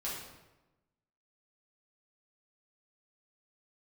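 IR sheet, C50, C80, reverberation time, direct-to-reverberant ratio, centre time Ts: 1.5 dB, 4.5 dB, 1.0 s, −7.5 dB, 61 ms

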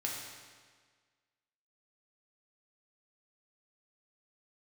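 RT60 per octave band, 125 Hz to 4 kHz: 1.6, 1.6, 1.6, 1.6, 1.6, 1.4 seconds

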